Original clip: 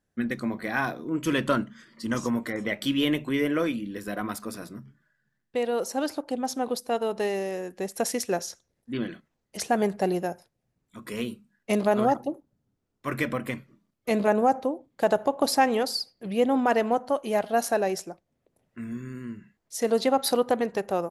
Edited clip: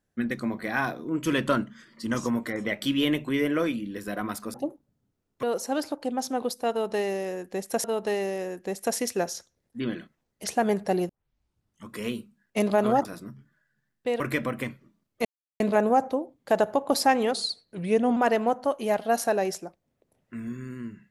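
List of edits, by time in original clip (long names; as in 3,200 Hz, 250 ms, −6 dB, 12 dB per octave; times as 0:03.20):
0:04.54–0:05.69: swap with 0:12.18–0:13.07
0:06.97–0:08.10: repeat, 2 plays
0:10.22: tape start 0.80 s
0:14.12: splice in silence 0.35 s
0:15.85–0:16.61: play speed 91%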